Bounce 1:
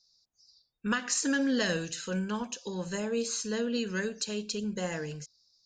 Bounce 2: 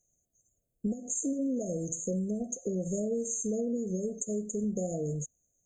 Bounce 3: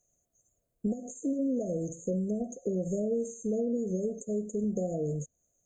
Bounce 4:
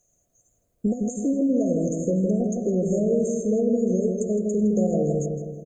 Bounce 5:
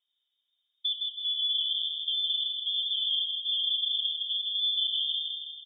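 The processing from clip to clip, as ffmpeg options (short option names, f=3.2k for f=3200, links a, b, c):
-filter_complex "[0:a]asplit=2[a][b];[b]alimiter=level_in=2.5dB:limit=-24dB:level=0:latency=1:release=181,volume=-2.5dB,volume=0.5dB[c];[a][c]amix=inputs=2:normalize=0,acompressor=threshold=-30dB:ratio=8,afftfilt=real='re*(1-between(b*sr/4096,730,6200))':imag='im*(1-between(b*sr/4096,730,6200))':win_size=4096:overlap=0.75,volume=2dB"
-filter_complex "[0:a]equalizer=f=950:w=0.73:g=8.5,acrossover=split=590[a][b];[b]acompressor=threshold=-46dB:ratio=6[c];[a][c]amix=inputs=2:normalize=0"
-filter_complex "[0:a]asplit=2[a][b];[b]adelay=161,lowpass=f=2k:p=1,volume=-3.5dB,asplit=2[c][d];[d]adelay=161,lowpass=f=2k:p=1,volume=0.55,asplit=2[e][f];[f]adelay=161,lowpass=f=2k:p=1,volume=0.55,asplit=2[g][h];[h]adelay=161,lowpass=f=2k:p=1,volume=0.55,asplit=2[i][j];[j]adelay=161,lowpass=f=2k:p=1,volume=0.55,asplit=2[k][l];[l]adelay=161,lowpass=f=2k:p=1,volume=0.55,asplit=2[m][n];[n]adelay=161,lowpass=f=2k:p=1,volume=0.55,asplit=2[o][p];[p]adelay=161,lowpass=f=2k:p=1,volume=0.55[q];[a][c][e][g][i][k][m][o][q]amix=inputs=9:normalize=0,volume=7dB"
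-af "lowpass=f=3.1k:t=q:w=0.5098,lowpass=f=3.1k:t=q:w=0.6013,lowpass=f=3.1k:t=q:w=0.9,lowpass=f=3.1k:t=q:w=2.563,afreqshift=-3700,volume=-7.5dB"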